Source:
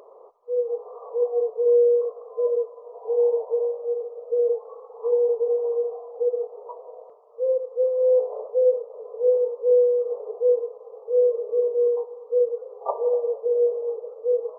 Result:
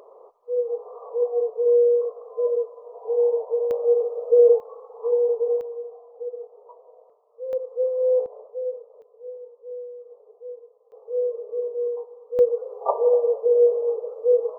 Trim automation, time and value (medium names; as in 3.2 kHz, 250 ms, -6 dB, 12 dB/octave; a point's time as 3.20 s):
0 dB
from 3.71 s +7.5 dB
from 4.60 s 0 dB
from 5.61 s -9 dB
from 7.53 s -1.5 dB
from 8.26 s -10 dB
from 9.02 s -18 dB
from 10.92 s -5.5 dB
from 12.39 s +4 dB